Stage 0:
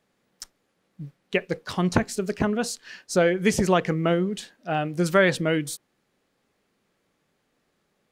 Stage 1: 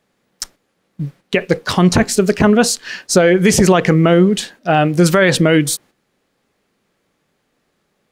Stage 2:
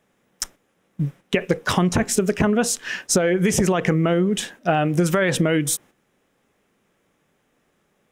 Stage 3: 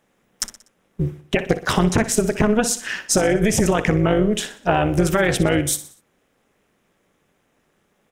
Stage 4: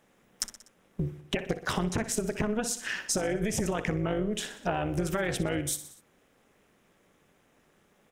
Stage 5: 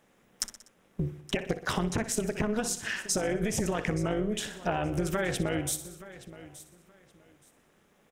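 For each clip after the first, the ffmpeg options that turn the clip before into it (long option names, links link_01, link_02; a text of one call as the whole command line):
ffmpeg -i in.wav -af "agate=range=-9dB:threshold=-53dB:ratio=16:detection=peak,alimiter=level_in=15.5dB:limit=-1dB:release=50:level=0:latency=1,volume=-1dB" out.wav
ffmpeg -i in.wav -af "equalizer=frequency=4400:width_type=o:width=0.29:gain=-12,acompressor=threshold=-15dB:ratio=12" out.wav
ffmpeg -i in.wav -af "tremolo=f=220:d=0.75,aecho=1:1:61|122|183|244:0.2|0.0898|0.0404|0.0182,volume=4.5dB" out.wav
ffmpeg -i in.wav -af "acompressor=threshold=-32dB:ratio=2.5" out.wav
ffmpeg -i in.wav -af "aecho=1:1:873|1746:0.141|0.0297" out.wav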